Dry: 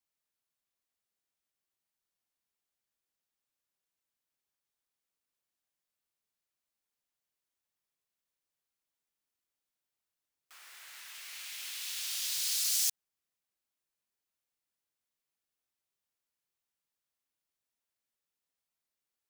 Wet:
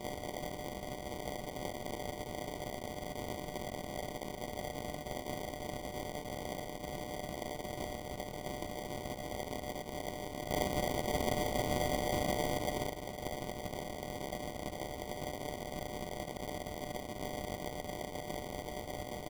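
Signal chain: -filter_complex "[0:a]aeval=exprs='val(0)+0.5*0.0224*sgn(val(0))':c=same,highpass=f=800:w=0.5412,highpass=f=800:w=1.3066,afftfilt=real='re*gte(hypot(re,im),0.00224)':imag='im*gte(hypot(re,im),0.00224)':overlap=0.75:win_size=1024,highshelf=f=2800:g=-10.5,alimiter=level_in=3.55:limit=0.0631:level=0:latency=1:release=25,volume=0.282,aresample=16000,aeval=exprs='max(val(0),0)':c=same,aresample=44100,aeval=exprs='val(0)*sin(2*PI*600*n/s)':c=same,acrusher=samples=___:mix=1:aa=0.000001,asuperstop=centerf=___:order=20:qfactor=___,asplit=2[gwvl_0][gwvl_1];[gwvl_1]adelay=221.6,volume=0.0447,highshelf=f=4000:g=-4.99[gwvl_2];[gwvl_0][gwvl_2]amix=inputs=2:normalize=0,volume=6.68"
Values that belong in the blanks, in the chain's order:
33, 1700, 4.1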